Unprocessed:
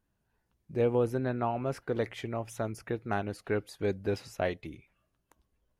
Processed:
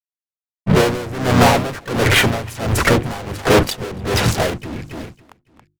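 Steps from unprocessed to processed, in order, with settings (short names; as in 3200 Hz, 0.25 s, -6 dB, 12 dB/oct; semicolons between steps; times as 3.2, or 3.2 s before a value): Wiener smoothing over 9 samples; fuzz box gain 53 dB, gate -60 dBFS; harmoniser -5 st -4 dB, +3 st -7 dB; notches 50/100/150/200/250/300/350 Hz; on a send: feedback echo 0.278 s, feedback 42%, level -18 dB; on the sum: dB-linear tremolo 1.4 Hz, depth 18 dB; gain +2.5 dB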